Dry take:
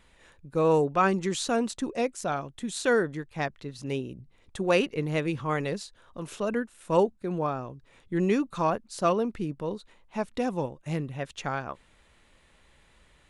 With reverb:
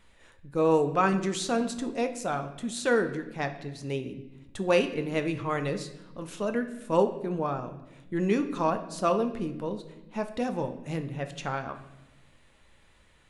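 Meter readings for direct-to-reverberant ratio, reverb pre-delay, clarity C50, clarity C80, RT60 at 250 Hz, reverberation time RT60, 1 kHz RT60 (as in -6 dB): 7.0 dB, 9 ms, 11.5 dB, 14.0 dB, 1.6 s, 1.0 s, 0.90 s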